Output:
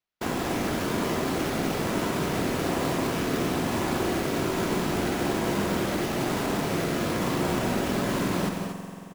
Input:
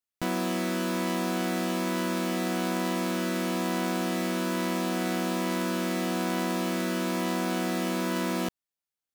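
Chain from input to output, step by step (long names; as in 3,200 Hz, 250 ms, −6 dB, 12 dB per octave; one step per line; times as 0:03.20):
random phases in short frames
spring reverb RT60 2.8 s, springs 45 ms, chirp 35 ms, DRR 6 dB
sample-rate reduction 8,500 Hz, jitter 0%
on a send: loudspeakers that aren't time-aligned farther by 60 metres −10 dB, 81 metres −9 dB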